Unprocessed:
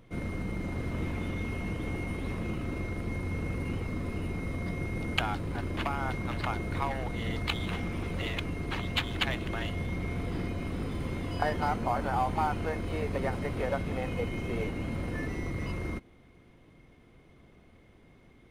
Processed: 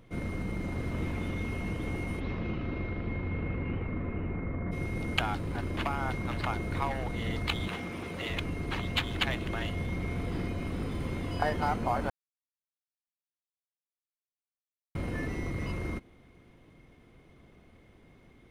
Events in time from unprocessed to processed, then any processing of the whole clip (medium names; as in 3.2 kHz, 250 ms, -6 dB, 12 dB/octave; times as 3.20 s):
2.19–4.71 s: low-pass 5 kHz -> 1.9 kHz 24 dB/octave
7.68–8.30 s: high-pass 230 Hz 6 dB/octave
12.10–14.95 s: mute